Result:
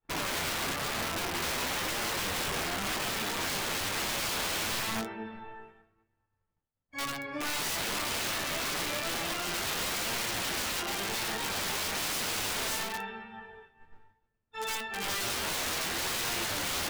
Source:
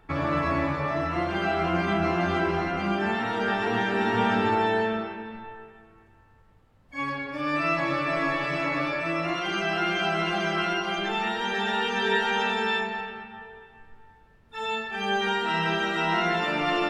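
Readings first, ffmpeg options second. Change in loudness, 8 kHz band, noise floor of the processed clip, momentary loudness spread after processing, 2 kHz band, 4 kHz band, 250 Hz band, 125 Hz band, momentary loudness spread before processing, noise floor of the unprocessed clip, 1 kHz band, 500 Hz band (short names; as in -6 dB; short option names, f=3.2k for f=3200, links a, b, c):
-5.0 dB, +16.5 dB, -80 dBFS, 7 LU, -6.5 dB, +0.5 dB, -12.0 dB, -10.0 dB, 9 LU, -57 dBFS, -9.5 dB, -11.0 dB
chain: -af "agate=range=-33dB:threshold=-44dB:ratio=3:detection=peak,aeval=exprs='(mod(15*val(0)+1,2)-1)/15':c=same,flanger=delay=8.5:depth=4:regen=58:speed=0.98:shape=sinusoidal"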